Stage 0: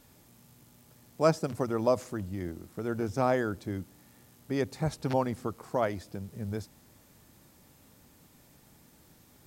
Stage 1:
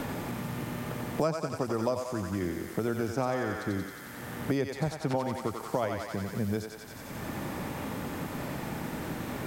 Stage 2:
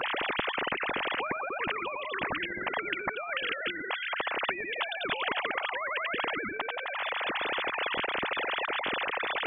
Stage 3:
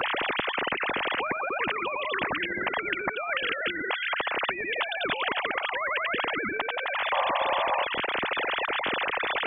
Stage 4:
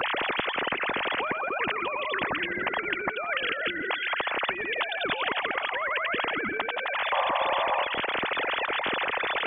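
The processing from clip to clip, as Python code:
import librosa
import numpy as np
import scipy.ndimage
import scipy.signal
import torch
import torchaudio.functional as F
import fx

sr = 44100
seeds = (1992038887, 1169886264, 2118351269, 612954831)

y1 = fx.echo_thinned(x, sr, ms=90, feedback_pct=70, hz=690.0, wet_db=-3.5)
y1 = fx.band_squash(y1, sr, depth_pct=100)
y2 = fx.sine_speech(y1, sr)
y2 = fx.spectral_comp(y2, sr, ratio=10.0)
y2 = y2 * 10.0 ** (-1.5 / 20.0)
y3 = fx.spec_paint(y2, sr, seeds[0], shape='noise', start_s=7.12, length_s=0.73, low_hz=510.0, high_hz=1200.0, level_db=-26.0)
y3 = fx.band_squash(y3, sr, depth_pct=70)
y3 = y3 * 10.0 ** (2.5 / 20.0)
y4 = fx.echo_feedback(y3, sr, ms=166, feedback_pct=36, wet_db=-16)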